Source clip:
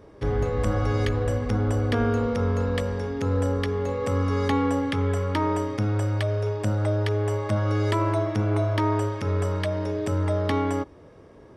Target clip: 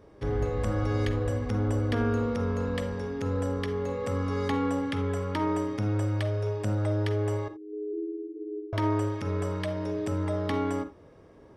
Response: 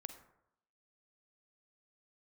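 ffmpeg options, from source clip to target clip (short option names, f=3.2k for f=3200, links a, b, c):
-filter_complex "[0:a]asettb=1/sr,asplit=3[a][b][c];[a]atrim=end=7.484[d];[b]atrim=start=7.48:end=8.73,asetpts=PTS-STARTPTS,afade=t=in:d=0.004:c=qsin,afade=t=out:st=1.246:d=0.004:c=qsin,asuperpass=centerf=380:order=12:qfactor=3[e];[c]atrim=start=8.726[f];[d][e]acrossfade=d=0.004:c1=hsin:c2=qsin[g];[g][f]acrossfade=d=0.004:c1=qsin:c2=hsin[h];[1:a]atrim=start_sample=2205,atrim=end_sample=3969[i];[h][i]afir=irnorm=-1:irlink=0"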